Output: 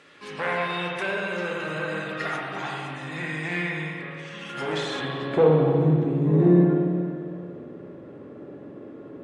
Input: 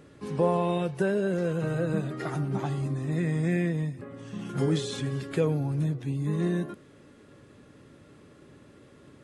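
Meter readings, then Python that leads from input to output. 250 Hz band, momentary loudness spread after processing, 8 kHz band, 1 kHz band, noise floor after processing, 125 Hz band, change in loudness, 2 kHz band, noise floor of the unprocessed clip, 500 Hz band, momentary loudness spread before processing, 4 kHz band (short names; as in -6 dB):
+4.5 dB, 23 LU, n/a, +5.5 dB, -43 dBFS, +2.5 dB, +4.5 dB, +10.5 dB, -54 dBFS, +5.0 dB, 9 LU, +7.0 dB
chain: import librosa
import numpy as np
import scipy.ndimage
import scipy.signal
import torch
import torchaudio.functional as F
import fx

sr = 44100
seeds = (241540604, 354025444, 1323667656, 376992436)

y = fx.fold_sine(x, sr, drive_db=7, ceiling_db=-12.5)
y = fx.filter_sweep_bandpass(y, sr, from_hz=2600.0, to_hz=420.0, start_s=4.56, end_s=5.5, q=0.98)
y = fx.rev_spring(y, sr, rt60_s=2.3, pass_ms=(45, 57), chirp_ms=75, drr_db=-1.5)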